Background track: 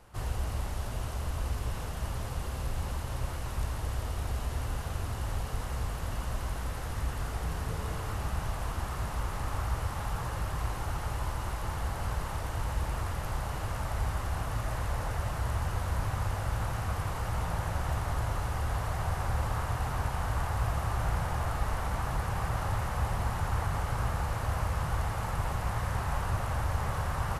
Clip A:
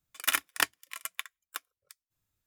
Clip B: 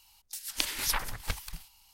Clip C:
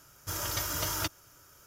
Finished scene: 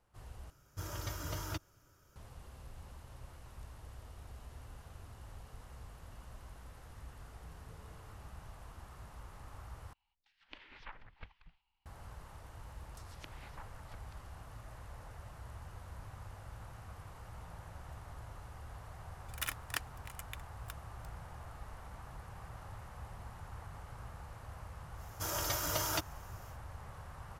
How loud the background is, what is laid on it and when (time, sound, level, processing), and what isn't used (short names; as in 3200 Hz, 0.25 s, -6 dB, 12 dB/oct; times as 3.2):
background track -17.5 dB
0.5 replace with C -8.5 dB + tilt -2 dB/oct
9.93 replace with B -17 dB + LPF 2900 Hz 24 dB/oct
12.64 add B -16 dB + treble ducked by the level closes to 1200 Hz, closed at -29 dBFS
19.14 add A -11.5 dB
24.93 add C -3.5 dB, fades 0.10 s + bell 700 Hz +6 dB 1 oct